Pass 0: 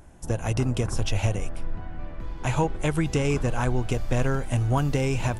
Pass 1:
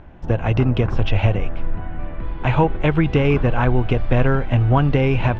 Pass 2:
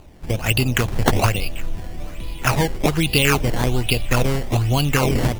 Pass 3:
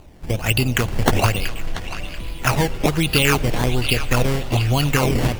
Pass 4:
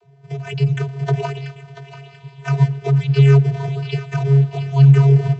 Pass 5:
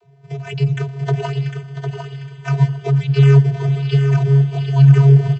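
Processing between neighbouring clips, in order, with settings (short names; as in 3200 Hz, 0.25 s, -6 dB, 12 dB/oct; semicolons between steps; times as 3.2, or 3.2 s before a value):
LPF 3200 Hz 24 dB/oct; gain +7.5 dB
resonant high shelf 2100 Hz +11 dB, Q 3; decimation with a swept rate 12×, swing 100% 1.2 Hz; gain -3 dB
narrowing echo 0.686 s, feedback 41%, band-pass 2800 Hz, level -8 dB; on a send at -19 dB: reverb RT60 4.9 s, pre-delay 68 ms
vocoder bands 32, square 138 Hz; gain +5.5 dB
feedback echo 0.753 s, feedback 22%, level -6.5 dB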